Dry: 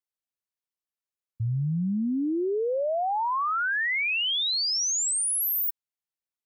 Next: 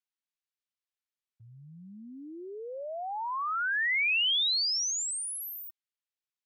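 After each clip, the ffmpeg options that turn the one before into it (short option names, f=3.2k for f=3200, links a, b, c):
-af "bandpass=f=2.9k:t=q:w=0.74:csg=0"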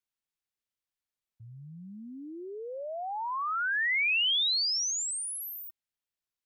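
-af "lowshelf=f=150:g=7.5"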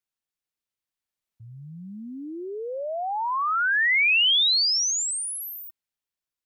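-af "dynaudnorm=f=330:g=9:m=7dB"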